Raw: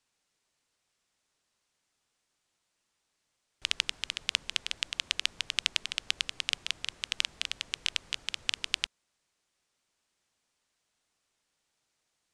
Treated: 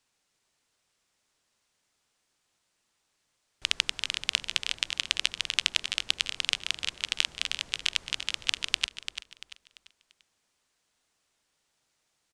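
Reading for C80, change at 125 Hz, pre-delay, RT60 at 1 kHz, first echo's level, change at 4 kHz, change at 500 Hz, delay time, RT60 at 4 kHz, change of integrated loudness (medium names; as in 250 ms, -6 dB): no reverb, +3.5 dB, no reverb, no reverb, -10.0 dB, +3.5 dB, +3.5 dB, 342 ms, no reverb, +3.5 dB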